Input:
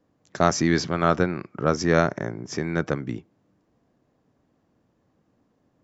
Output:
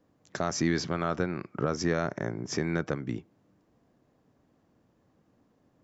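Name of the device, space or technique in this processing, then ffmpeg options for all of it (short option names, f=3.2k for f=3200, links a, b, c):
stacked limiters: -af "alimiter=limit=-8.5dB:level=0:latency=1:release=77,alimiter=limit=-15.5dB:level=0:latency=1:release=402"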